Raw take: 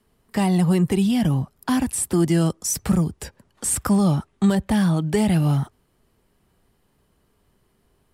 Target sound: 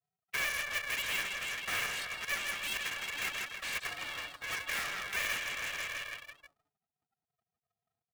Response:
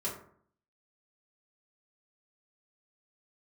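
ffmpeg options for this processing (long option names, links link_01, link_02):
-filter_complex "[0:a]aecho=1:1:163|326|489|652|815|978|1141:0.335|0.194|0.113|0.0654|0.0379|0.022|0.0128,asplit=2[link_01][link_02];[link_02]asetrate=22050,aresample=44100,atempo=2,volume=-9dB[link_03];[link_01][link_03]amix=inputs=2:normalize=0,aecho=1:1:2:0.82,areverse,acompressor=threshold=-27dB:ratio=6,areverse,afftfilt=real='re*gte(hypot(re,im),0.00251)':imag='im*gte(hypot(re,im),0.00251)':win_size=1024:overlap=0.75,asuperpass=centerf=2200:order=4:qfactor=3.3,acontrast=45,aeval=exprs='0.00841*(cos(1*acos(clip(val(0)/0.00841,-1,1)))-cos(1*PI/2))+0.00376*(cos(5*acos(clip(val(0)/0.00841,-1,1)))-cos(5*PI/2))+0.0000531*(cos(8*acos(clip(val(0)/0.00841,-1,1)))-cos(8*PI/2))':channel_layout=same,aeval=exprs='val(0)*sgn(sin(2*PI*290*n/s))':channel_layout=same,volume=9dB"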